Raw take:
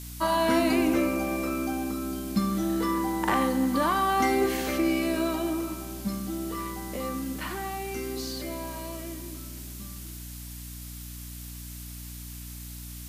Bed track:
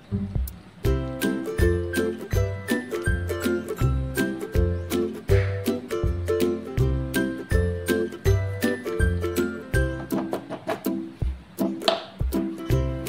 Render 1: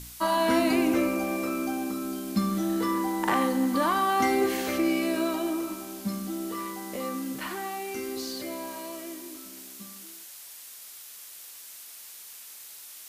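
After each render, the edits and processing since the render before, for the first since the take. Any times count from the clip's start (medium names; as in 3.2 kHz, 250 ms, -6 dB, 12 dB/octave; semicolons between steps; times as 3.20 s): de-hum 60 Hz, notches 5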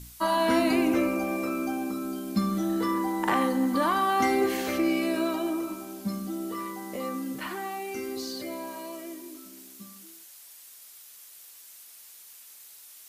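noise reduction 6 dB, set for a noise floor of -46 dBFS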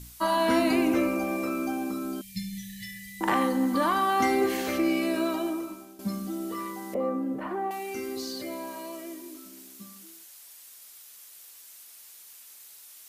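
2.21–3.21 s: brick-wall FIR band-stop 190–1700 Hz; 5.41–5.99 s: fade out linear, to -12 dB; 6.94–7.71 s: FFT filter 140 Hz 0 dB, 630 Hz +8 dB, 4.6 kHz -19 dB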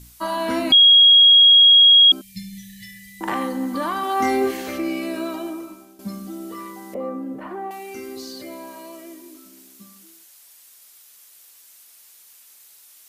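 0.72–2.12 s: bleep 3.29 kHz -7.5 dBFS; 4.01–4.51 s: doubling 23 ms -2.5 dB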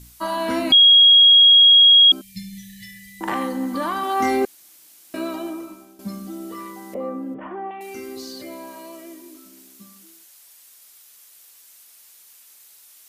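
4.45–5.14 s: room tone; 7.34–7.81 s: Chebyshev low-pass 3.4 kHz, order 6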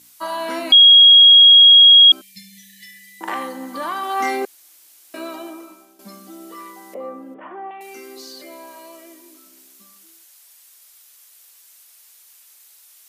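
Bessel high-pass 450 Hz, order 2; dynamic bell 2.3 kHz, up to +4 dB, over -27 dBFS, Q 0.75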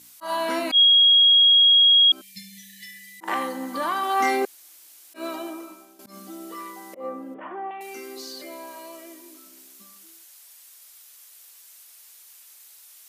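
slow attack 112 ms; compression, threshold -14 dBFS, peak gain reduction 7 dB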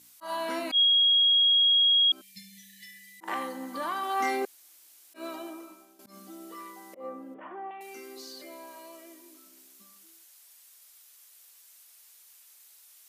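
trim -6.5 dB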